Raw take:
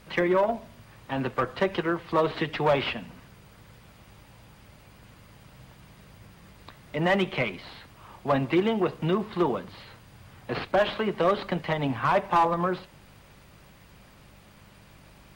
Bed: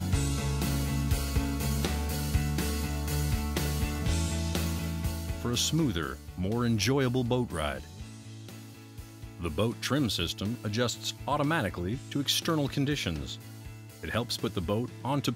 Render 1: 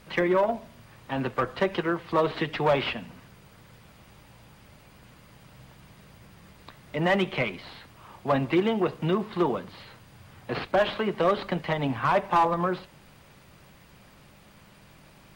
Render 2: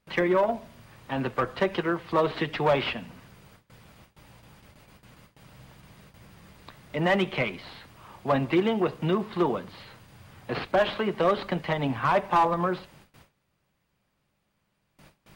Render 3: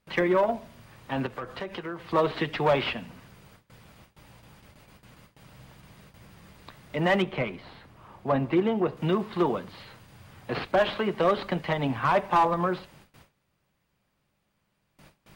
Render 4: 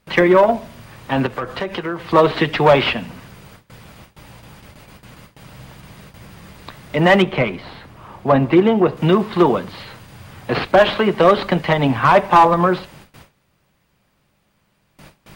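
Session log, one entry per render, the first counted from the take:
de-hum 50 Hz, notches 2
gate with hold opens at -42 dBFS
1.26–2 compressor 3:1, threshold -34 dBFS; 7.22–8.97 high shelf 2100 Hz -9.5 dB
gain +11 dB

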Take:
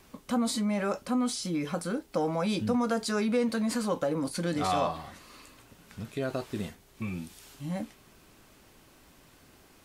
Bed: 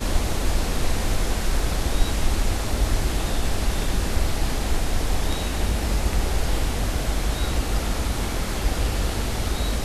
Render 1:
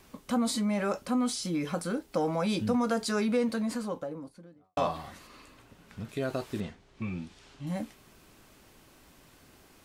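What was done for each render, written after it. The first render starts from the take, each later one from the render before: 3.19–4.77 studio fade out; 5.27–6.09 high shelf 5200 Hz -9 dB; 6.6–7.67 air absorption 110 m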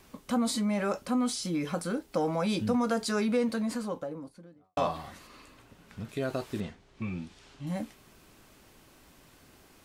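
nothing audible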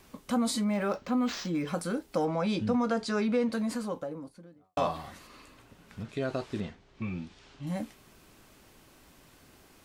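0.64–1.68 decimation joined by straight lines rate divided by 4×; 2.25–3.53 air absorption 80 m; 6.03–7.63 LPF 6700 Hz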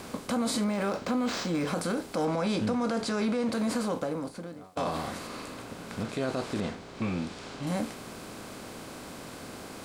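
per-bin compression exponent 0.6; limiter -20.5 dBFS, peak gain reduction 8 dB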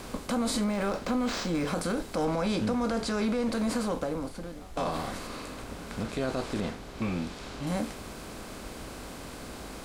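add bed -24 dB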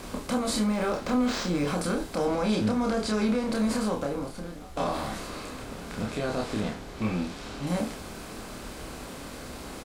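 doubler 28 ms -3 dB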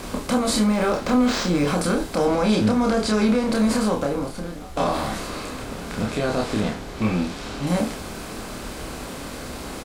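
gain +6.5 dB

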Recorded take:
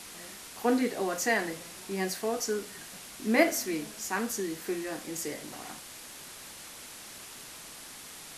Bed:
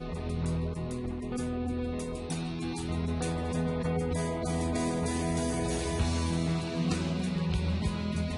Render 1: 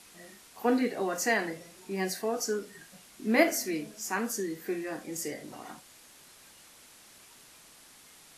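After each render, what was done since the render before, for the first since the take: noise print and reduce 9 dB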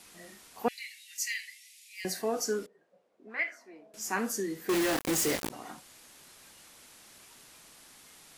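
0.68–2.05 steep high-pass 2000 Hz 72 dB/oct; 2.66–3.94 auto-wah 490–2100 Hz, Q 4.3, up, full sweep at -19 dBFS; 4.69–5.5 companded quantiser 2-bit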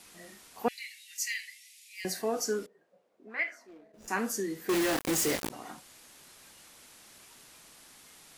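3.67–4.08 median filter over 41 samples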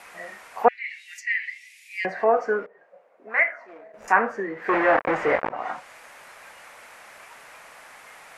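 treble ducked by the level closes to 1800 Hz, closed at -31.5 dBFS; band shelf 1100 Hz +15.5 dB 2.7 oct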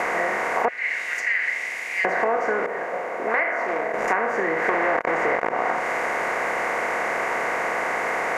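per-bin compression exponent 0.4; compressor 5:1, threshold -19 dBFS, peak gain reduction 10.5 dB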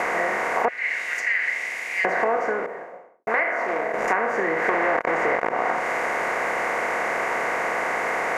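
2.3–3.27 studio fade out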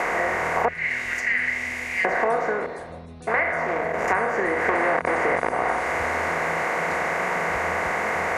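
add bed -10.5 dB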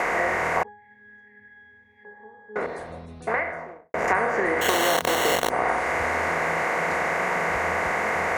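0.63–2.56 octave resonator G#, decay 0.74 s; 3.14–3.94 studio fade out; 4.61–5.5 sample-rate reducer 4900 Hz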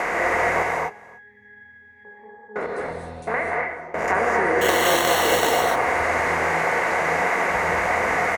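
echo 0.293 s -22.5 dB; non-linear reverb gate 0.28 s rising, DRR -0.5 dB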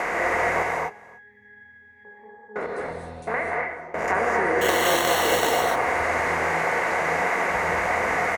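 gain -2 dB

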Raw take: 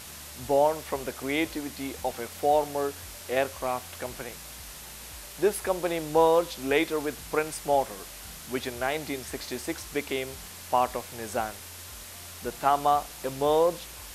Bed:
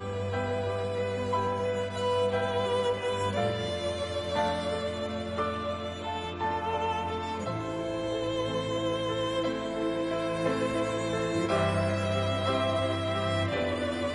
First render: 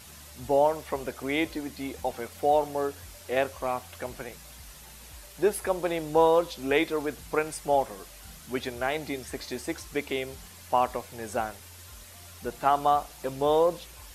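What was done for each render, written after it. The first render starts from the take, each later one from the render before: denoiser 7 dB, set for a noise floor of -44 dBFS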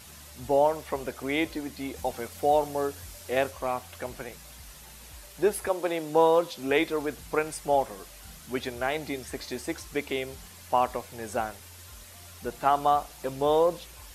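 1.96–3.51 tone controls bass +2 dB, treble +3 dB; 5.68–6.76 HPF 240 Hz -> 70 Hz 24 dB/oct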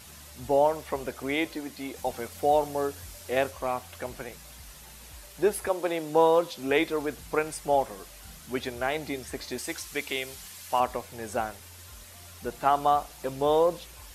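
1.34–2.07 low shelf 140 Hz -9 dB; 9.58–10.8 tilt shelf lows -5.5 dB, about 1200 Hz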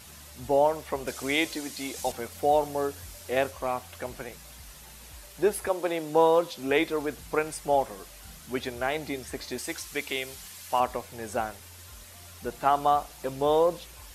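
1.07–2.12 bell 6700 Hz +10 dB 2.3 oct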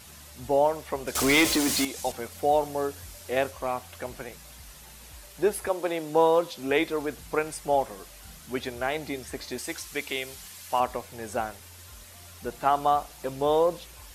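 1.15–1.85 power-law curve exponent 0.5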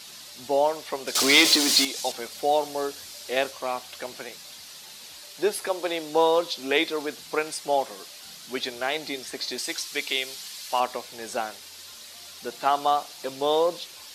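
HPF 230 Hz 12 dB/oct; bell 4300 Hz +11.5 dB 1.2 oct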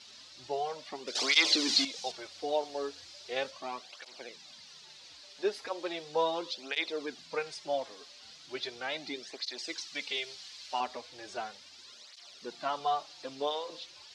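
ladder low-pass 6700 Hz, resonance 25%; tape flanging out of phase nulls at 0.37 Hz, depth 6.4 ms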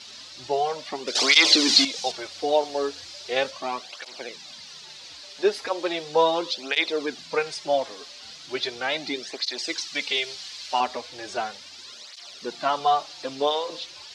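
gain +9.5 dB; limiter -3 dBFS, peak gain reduction 3 dB

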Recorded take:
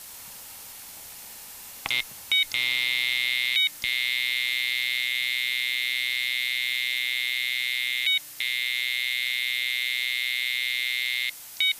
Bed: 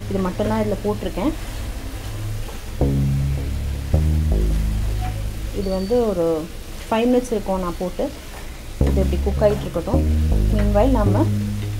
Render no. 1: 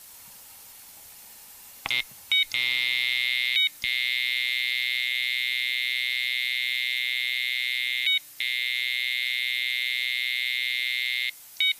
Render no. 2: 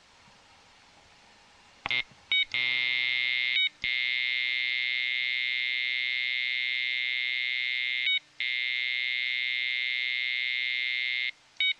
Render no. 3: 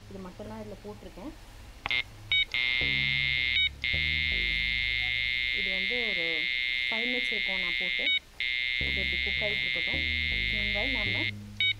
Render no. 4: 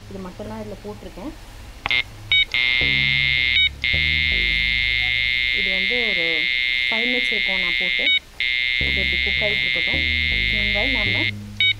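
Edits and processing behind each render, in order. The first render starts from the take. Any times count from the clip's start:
denoiser 6 dB, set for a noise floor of -43 dBFS
Gaussian blur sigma 1.9 samples
add bed -20.5 dB
gain +9 dB

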